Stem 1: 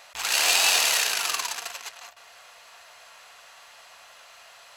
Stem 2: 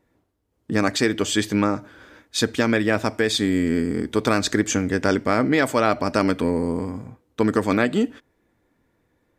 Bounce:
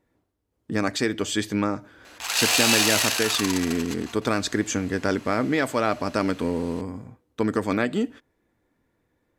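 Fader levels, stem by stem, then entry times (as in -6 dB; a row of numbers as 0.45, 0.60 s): 0.0, -4.0 dB; 2.05, 0.00 s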